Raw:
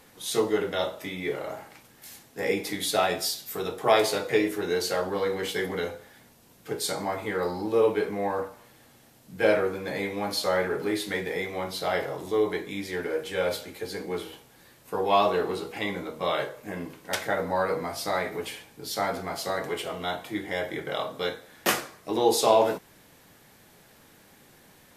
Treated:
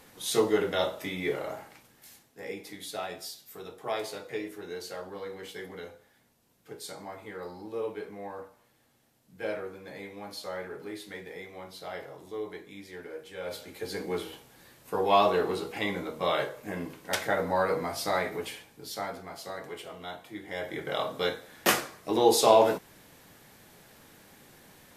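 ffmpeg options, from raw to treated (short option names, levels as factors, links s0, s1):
-af "volume=11.9,afade=t=out:st=1.27:d=1.12:silence=0.251189,afade=t=in:st=13.41:d=0.54:silence=0.266073,afade=t=out:st=18.16:d=1.04:silence=0.354813,afade=t=in:st=20.4:d=0.68:silence=0.316228"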